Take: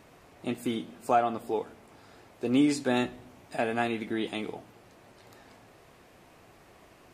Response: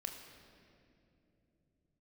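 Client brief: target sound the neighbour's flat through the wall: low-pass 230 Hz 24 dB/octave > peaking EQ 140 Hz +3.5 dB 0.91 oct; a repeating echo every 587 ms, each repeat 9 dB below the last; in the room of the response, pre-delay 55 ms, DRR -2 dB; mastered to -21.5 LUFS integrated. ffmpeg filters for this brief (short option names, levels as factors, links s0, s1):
-filter_complex "[0:a]aecho=1:1:587|1174|1761|2348:0.355|0.124|0.0435|0.0152,asplit=2[s0][s1];[1:a]atrim=start_sample=2205,adelay=55[s2];[s1][s2]afir=irnorm=-1:irlink=0,volume=1.58[s3];[s0][s3]amix=inputs=2:normalize=0,lowpass=f=230:w=0.5412,lowpass=f=230:w=1.3066,equalizer=f=140:t=o:w=0.91:g=3.5,volume=4.47"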